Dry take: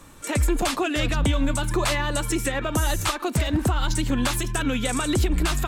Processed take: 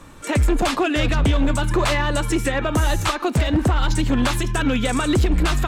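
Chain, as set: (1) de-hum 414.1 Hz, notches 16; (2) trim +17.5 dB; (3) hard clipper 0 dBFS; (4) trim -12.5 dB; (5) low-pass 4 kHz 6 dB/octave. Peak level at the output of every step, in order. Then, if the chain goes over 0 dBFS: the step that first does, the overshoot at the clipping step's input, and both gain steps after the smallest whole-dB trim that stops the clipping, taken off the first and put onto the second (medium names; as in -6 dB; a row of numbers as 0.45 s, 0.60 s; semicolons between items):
-12.0 dBFS, +5.5 dBFS, 0.0 dBFS, -12.5 dBFS, -12.5 dBFS; step 2, 5.5 dB; step 2 +11.5 dB, step 4 -6.5 dB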